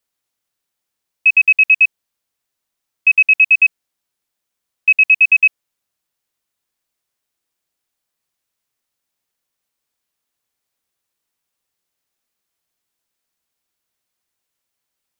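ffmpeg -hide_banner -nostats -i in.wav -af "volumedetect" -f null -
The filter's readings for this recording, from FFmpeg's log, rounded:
mean_volume: -20.9 dB
max_volume: -5.0 dB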